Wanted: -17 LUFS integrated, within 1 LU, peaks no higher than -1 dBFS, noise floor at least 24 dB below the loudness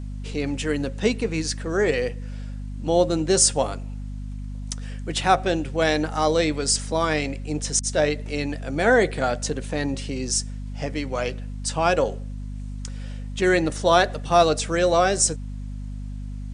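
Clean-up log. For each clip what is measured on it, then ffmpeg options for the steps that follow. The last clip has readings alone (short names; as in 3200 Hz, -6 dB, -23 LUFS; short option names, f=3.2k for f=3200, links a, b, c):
hum 50 Hz; harmonics up to 250 Hz; hum level -30 dBFS; loudness -23.0 LUFS; peak -3.5 dBFS; loudness target -17.0 LUFS
-> -af "bandreject=f=50:t=h:w=6,bandreject=f=100:t=h:w=6,bandreject=f=150:t=h:w=6,bandreject=f=200:t=h:w=6,bandreject=f=250:t=h:w=6"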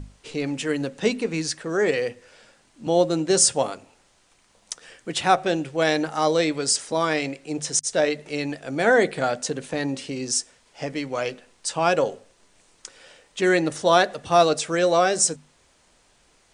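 hum none; loudness -23.0 LUFS; peak -3.5 dBFS; loudness target -17.0 LUFS
-> -af "volume=6dB,alimiter=limit=-1dB:level=0:latency=1"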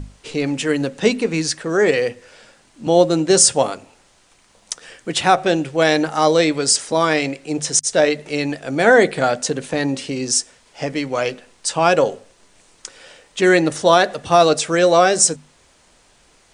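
loudness -17.0 LUFS; peak -1.0 dBFS; noise floor -55 dBFS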